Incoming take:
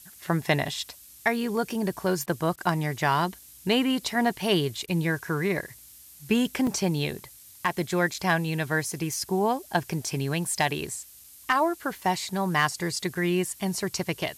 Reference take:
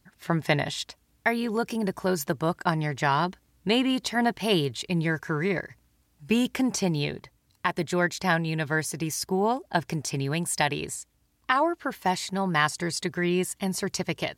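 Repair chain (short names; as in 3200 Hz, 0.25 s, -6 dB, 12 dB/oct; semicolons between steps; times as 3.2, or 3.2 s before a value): clip repair -12 dBFS; interpolate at 0.65/6.67/8.14/11.24/13.15, 3.1 ms; interpolate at 2.26/2.56/4.86, 15 ms; noise print and reduce 16 dB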